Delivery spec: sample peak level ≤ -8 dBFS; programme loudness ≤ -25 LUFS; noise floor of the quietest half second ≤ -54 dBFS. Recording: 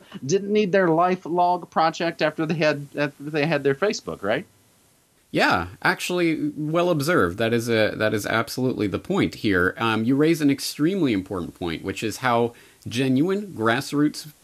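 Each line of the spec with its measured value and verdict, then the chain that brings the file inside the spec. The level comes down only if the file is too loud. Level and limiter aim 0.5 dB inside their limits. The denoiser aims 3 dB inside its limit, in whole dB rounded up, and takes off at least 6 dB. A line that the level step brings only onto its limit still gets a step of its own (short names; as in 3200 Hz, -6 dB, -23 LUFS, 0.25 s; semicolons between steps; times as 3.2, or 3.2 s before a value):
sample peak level -5.0 dBFS: fail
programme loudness -22.5 LUFS: fail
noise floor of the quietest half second -60 dBFS: OK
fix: gain -3 dB; limiter -8.5 dBFS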